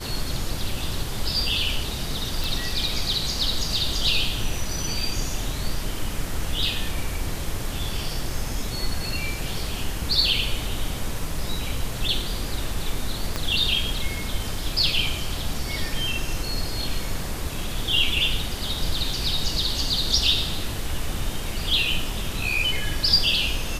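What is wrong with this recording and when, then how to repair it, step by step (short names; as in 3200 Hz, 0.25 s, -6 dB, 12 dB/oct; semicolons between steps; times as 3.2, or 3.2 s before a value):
2.44 pop
13.36 pop -11 dBFS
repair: de-click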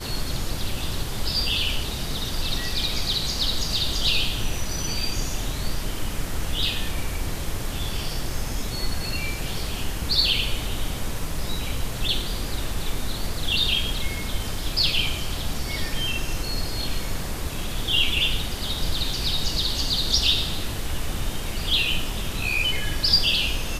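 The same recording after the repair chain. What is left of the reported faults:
13.36 pop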